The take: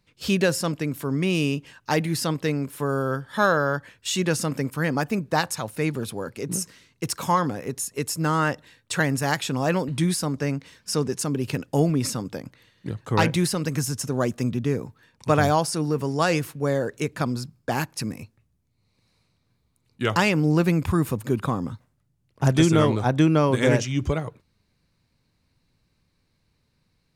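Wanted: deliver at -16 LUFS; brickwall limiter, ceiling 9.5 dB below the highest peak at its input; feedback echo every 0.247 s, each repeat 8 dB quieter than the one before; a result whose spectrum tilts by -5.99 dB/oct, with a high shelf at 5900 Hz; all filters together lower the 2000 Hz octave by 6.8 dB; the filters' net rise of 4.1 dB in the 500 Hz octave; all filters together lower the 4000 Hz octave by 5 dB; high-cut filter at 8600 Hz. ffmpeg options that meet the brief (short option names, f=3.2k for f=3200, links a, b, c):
-af "lowpass=8.6k,equalizer=f=500:t=o:g=5.5,equalizer=f=2k:t=o:g=-9,equalizer=f=4k:t=o:g=-6,highshelf=f=5.9k:g=4.5,alimiter=limit=-14dB:level=0:latency=1,aecho=1:1:247|494|741|988|1235:0.398|0.159|0.0637|0.0255|0.0102,volume=9.5dB"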